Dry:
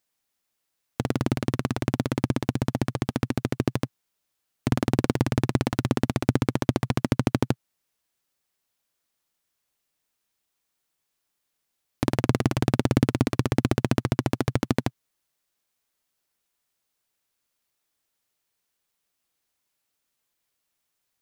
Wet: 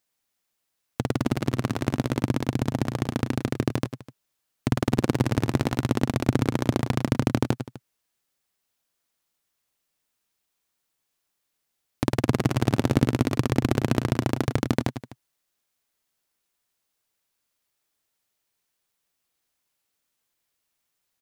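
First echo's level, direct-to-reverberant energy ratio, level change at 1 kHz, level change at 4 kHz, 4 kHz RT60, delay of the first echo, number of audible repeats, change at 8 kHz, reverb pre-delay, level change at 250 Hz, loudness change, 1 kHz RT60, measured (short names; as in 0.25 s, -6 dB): -10.0 dB, none, +0.5 dB, +0.5 dB, none, 0.103 s, 2, +0.5 dB, none, +0.5 dB, +0.5 dB, none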